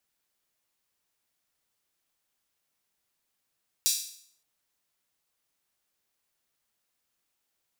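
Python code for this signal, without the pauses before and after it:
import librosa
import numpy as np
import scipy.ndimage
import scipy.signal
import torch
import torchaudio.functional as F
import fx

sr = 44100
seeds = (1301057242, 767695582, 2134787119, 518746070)

y = fx.drum_hat_open(sr, length_s=0.57, from_hz=4700.0, decay_s=0.6)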